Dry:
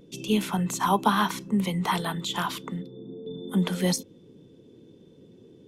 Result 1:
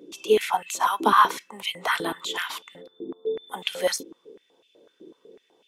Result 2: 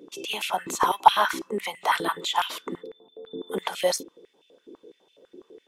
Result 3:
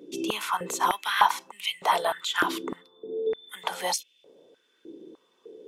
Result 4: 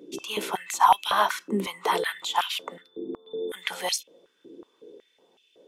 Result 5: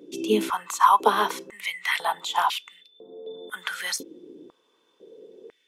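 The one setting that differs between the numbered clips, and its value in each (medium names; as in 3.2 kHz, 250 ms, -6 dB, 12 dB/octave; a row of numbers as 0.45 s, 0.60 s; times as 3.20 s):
step-sequenced high-pass, rate: 8 Hz, 12 Hz, 3.3 Hz, 5.4 Hz, 2 Hz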